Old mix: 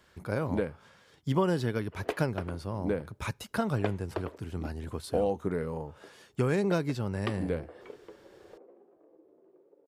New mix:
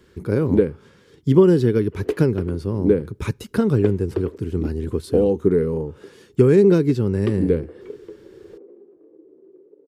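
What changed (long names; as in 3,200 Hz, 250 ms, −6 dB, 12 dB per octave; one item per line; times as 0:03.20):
speech +3.5 dB
master: add low shelf with overshoot 520 Hz +7.5 dB, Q 3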